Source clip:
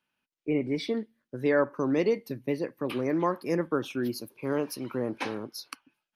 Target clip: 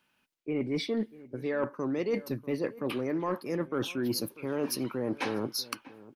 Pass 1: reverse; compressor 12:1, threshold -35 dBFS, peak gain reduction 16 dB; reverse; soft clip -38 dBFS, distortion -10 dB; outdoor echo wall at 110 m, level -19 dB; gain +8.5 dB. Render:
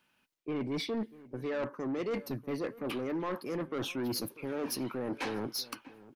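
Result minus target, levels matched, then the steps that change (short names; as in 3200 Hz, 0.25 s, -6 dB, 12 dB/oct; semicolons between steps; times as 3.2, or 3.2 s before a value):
soft clip: distortion +14 dB
change: soft clip -27 dBFS, distortion -24 dB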